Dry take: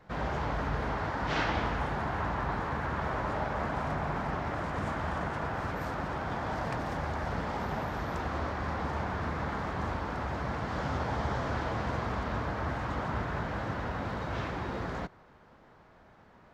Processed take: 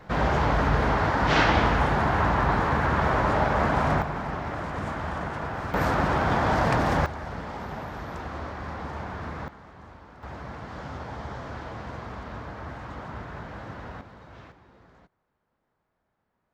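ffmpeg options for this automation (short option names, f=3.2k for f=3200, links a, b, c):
-af "asetnsamples=n=441:p=0,asendcmd='4.02 volume volume 2dB;5.74 volume volume 11dB;7.06 volume volume -1.5dB;9.48 volume volume -13.5dB;10.23 volume volume -4.5dB;14.01 volume volume -12.5dB;14.52 volume volume -20dB',volume=9.5dB"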